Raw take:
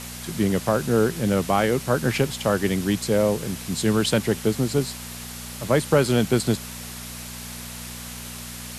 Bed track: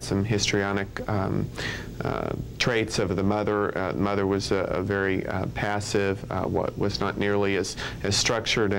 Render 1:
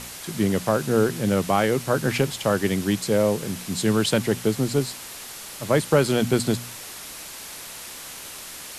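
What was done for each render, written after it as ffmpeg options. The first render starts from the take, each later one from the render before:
-af "bandreject=f=60:t=h:w=4,bandreject=f=120:t=h:w=4,bandreject=f=180:t=h:w=4,bandreject=f=240:t=h:w=4"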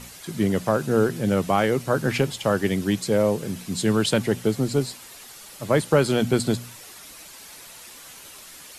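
-af "afftdn=nr=8:nf=-39"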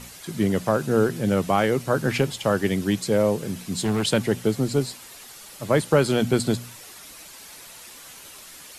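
-filter_complex "[0:a]asettb=1/sr,asplit=3[a][b][c];[a]atrim=end=3.554[d];[b]atrim=start=3.55:end=4.05,asetpts=PTS-STARTPTS,afade=t=in:d=0.004:c=qsin,afade=t=out:st=0.496:d=0.004:c=qsin,asoftclip=type=hard:threshold=-19.5dB[e];[c]atrim=start=4.046[f];[d][e]acrossfade=d=0.004:c1=hsin:c2=qsin[g];[g][f]acrossfade=d=0.004:c1=qsin:c2=hsin"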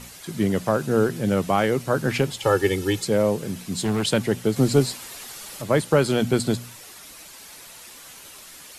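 -filter_complex "[0:a]asettb=1/sr,asplit=3[a][b][c];[a]atrim=end=2.424[d];[b]atrim=start=2.42:end=3.05,asetpts=PTS-STARTPTS,afade=t=in:d=0.004:c=qsin,afade=t=out:st=0.626:d=0.004:c=qsin,aecho=1:1:2.3:0.94,atrim=end_sample=27783[e];[c]atrim=start=3.046[f];[d][e]acrossfade=d=0.004:c1=hsin:c2=qsin[g];[g][f]acrossfade=d=0.004:c1=qsin:c2=hsin,asettb=1/sr,asplit=3[h][i][j];[h]atrim=end=4.564[k];[i]atrim=start=4.56:end=5.62,asetpts=PTS-STARTPTS,afade=t=in:d=0.004:c=qsin,afade=t=out:st=1.056:d=0.004:c=qsin,acontrast=25[l];[j]atrim=start=5.616[m];[k][l]acrossfade=d=0.004:c1=hsin:c2=qsin[n];[n][m]acrossfade=d=0.004:c1=qsin:c2=hsin"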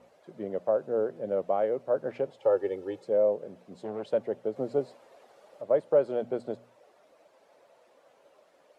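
-af "bandpass=f=570:t=q:w=3.8:csg=0"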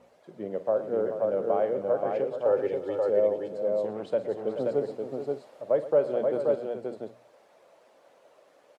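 -af "aecho=1:1:47|117|315|429|529|589:0.211|0.168|0.106|0.316|0.668|0.1"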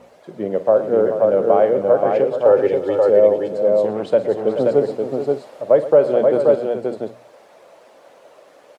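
-af "volume=11.5dB,alimiter=limit=-3dB:level=0:latency=1"

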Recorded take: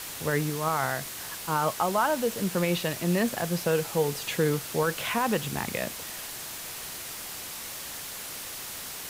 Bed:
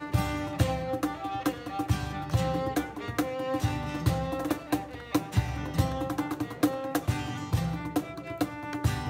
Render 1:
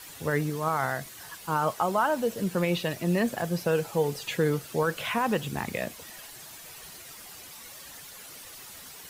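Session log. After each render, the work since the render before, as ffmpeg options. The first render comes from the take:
-af "afftdn=nr=10:nf=-39"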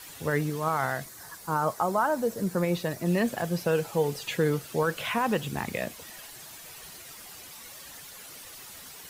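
-filter_complex "[0:a]asettb=1/sr,asplit=3[a][b][c];[a]atrim=end=1.054[d];[b]atrim=start=1.05:end=3.06,asetpts=PTS-STARTPTS,afade=t=in:d=0.004:c=qsin,afade=t=out:st=2.006:d=0.004:c=qsin,equalizer=f=2.9k:w=2.1:g=-10.5[e];[c]atrim=start=3.056[f];[d][e]acrossfade=d=0.004:c1=hsin:c2=qsin[g];[g][f]acrossfade=d=0.004:c1=qsin:c2=hsin"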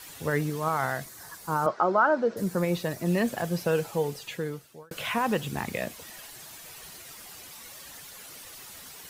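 -filter_complex "[0:a]asettb=1/sr,asplit=3[a][b][c];[a]atrim=end=1.664[d];[b]atrim=start=1.66:end=2.37,asetpts=PTS-STARTPTS,afade=t=in:d=0.004:c=qsin,afade=t=out:st=0.706:d=0.004:c=qsin,highpass=170,equalizer=f=350:t=q:w=4:g=7,equalizer=f=580:t=q:w=4:g=4,equalizer=f=1.4k:t=q:w=4:g=9,equalizer=f=3.8k:t=q:w=4:g=-3,lowpass=f=4.6k:w=0.5412,lowpass=f=4.6k:w=1.3066[e];[c]atrim=start=2.366[f];[d][e]acrossfade=d=0.004:c1=hsin:c2=qsin[g];[g][f]acrossfade=d=0.004:c1=qsin:c2=hsin,asplit=2[h][i];[h]atrim=end=4.91,asetpts=PTS-STARTPTS,afade=t=out:st=3.8:d=1.11[j];[i]atrim=start=4.91,asetpts=PTS-STARTPTS,afade=t=in:d=0.004:c=hsin[k];[j][k]concat=n=2:v=0:a=1"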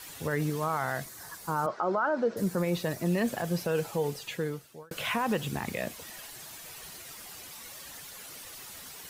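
-af "alimiter=limit=-19dB:level=0:latency=1:release=53"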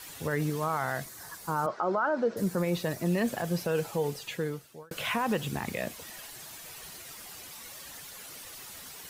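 -af anull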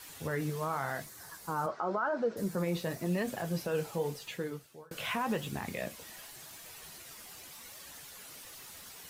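-af "flanger=delay=9.3:depth=9.7:regen=-52:speed=0.9:shape=triangular"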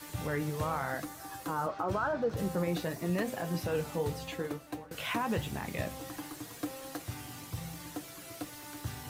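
-filter_complex "[1:a]volume=-12.5dB[a];[0:a][a]amix=inputs=2:normalize=0"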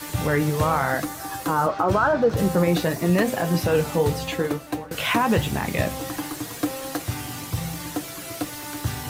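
-af "volume=12dB"

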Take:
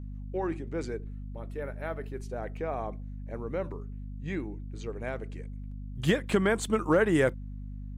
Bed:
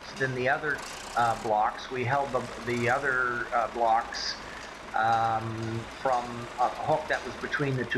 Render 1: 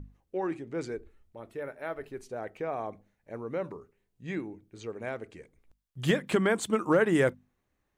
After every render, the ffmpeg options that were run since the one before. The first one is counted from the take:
-af "bandreject=f=50:t=h:w=6,bandreject=f=100:t=h:w=6,bandreject=f=150:t=h:w=6,bandreject=f=200:t=h:w=6,bandreject=f=250:t=h:w=6"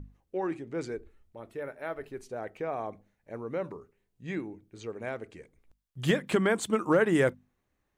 -af anull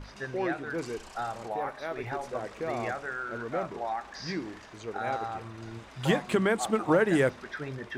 -filter_complex "[1:a]volume=-9dB[a];[0:a][a]amix=inputs=2:normalize=0"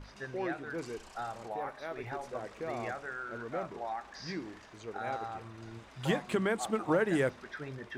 -af "volume=-5dB"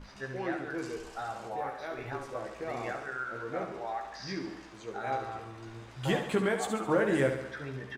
-filter_complex "[0:a]asplit=2[a][b];[b]adelay=15,volume=-5dB[c];[a][c]amix=inputs=2:normalize=0,aecho=1:1:70|140|210|280|350|420|490:0.398|0.219|0.12|0.0662|0.0364|0.02|0.011"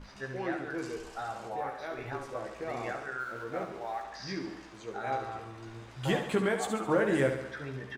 -filter_complex "[0:a]asettb=1/sr,asplit=3[a][b][c];[a]atrim=end=3.204[d];[b]atrim=start=3.2:end=4.04,asetpts=PTS-STARTPTS,afade=t=in:d=0.004:c=qsin,afade=t=out:st=0.836:d=0.004:c=qsin,aeval=exprs='sgn(val(0))*max(abs(val(0))-0.00158,0)':c=same[e];[c]atrim=start=4.036[f];[d][e]acrossfade=d=0.004:c1=hsin:c2=qsin[g];[g][f]acrossfade=d=0.004:c1=qsin:c2=hsin"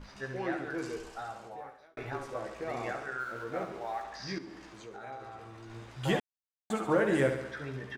-filter_complex "[0:a]asettb=1/sr,asplit=3[a][b][c];[a]atrim=end=4.384[d];[b]atrim=start=4.38:end=5.7,asetpts=PTS-STARTPTS,afade=t=in:d=0.004:c=qsin,afade=t=out:st=1.316:d=0.004:c=qsin,acompressor=threshold=-45dB:ratio=2.5:attack=3.2:release=140:knee=1:detection=peak[e];[c]atrim=start=5.696[f];[d][e]acrossfade=d=0.004:c1=hsin:c2=qsin[g];[g][f]acrossfade=d=0.004:c1=qsin:c2=hsin,asplit=4[h][i][j][k];[h]atrim=end=1.97,asetpts=PTS-STARTPTS,afade=t=out:st=0.94:d=1.03[l];[i]atrim=start=1.97:end=6.2,asetpts=PTS-STARTPTS,afade=t=in:d=0.004:c=hsin,afade=t=out:st=4.226:d=0.004:c=hsin[m];[j]atrim=start=6.2:end=6.7,asetpts=PTS-STARTPTS,volume=0[n];[k]atrim=start=6.7,asetpts=PTS-STARTPTS,afade=t=in:d=0.004:c=hsin[o];[l][m][n][o]concat=n=4:v=0:a=1"

